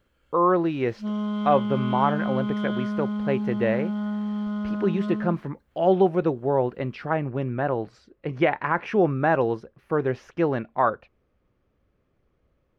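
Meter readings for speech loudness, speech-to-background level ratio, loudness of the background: -25.0 LUFS, 3.5 dB, -28.5 LUFS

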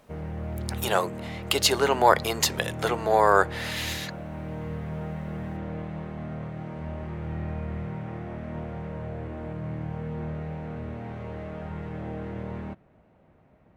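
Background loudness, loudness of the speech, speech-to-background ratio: -35.5 LUFS, -24.0 LUFS, 11.5 dB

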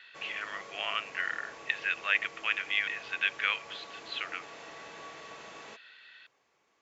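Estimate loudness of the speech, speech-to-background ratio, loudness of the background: -32.0 LUFS, 15.5 dB, -47.5 LUFS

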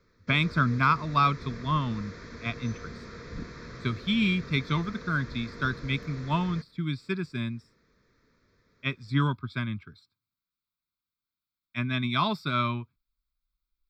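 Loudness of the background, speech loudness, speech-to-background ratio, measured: -43.0 LUFS, -29.0 LUFS, 14.0 dB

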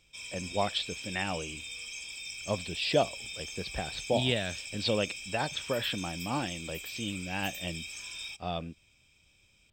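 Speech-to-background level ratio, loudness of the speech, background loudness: 6.0 dB, -33.5 LUFS, -39.5 LUFS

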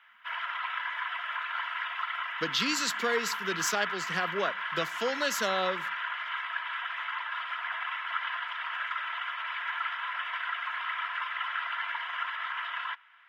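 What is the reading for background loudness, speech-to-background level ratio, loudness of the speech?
-33.5 LUFS, 2.5 dB, -31.0 LUFS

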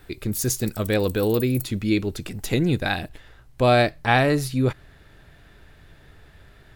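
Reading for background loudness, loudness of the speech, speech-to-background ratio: -37.0 LUFS, -23.0 LUFS, 14.0 dB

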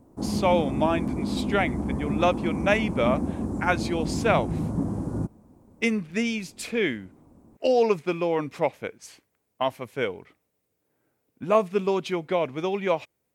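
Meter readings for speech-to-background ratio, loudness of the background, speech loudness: 3.0 dB, -29.5 LUFS, -26.5 LUFS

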